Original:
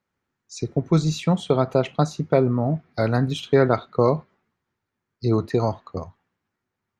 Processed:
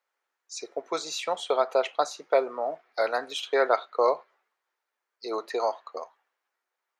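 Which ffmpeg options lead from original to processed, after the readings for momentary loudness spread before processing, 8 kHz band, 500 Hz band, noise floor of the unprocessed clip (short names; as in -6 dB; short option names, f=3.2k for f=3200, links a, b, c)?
9 LU, n/a, -4.0 dB, -82 dBFS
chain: -af "highpass=f=510:w=0.5412,highpass=f=510:w=1.3066"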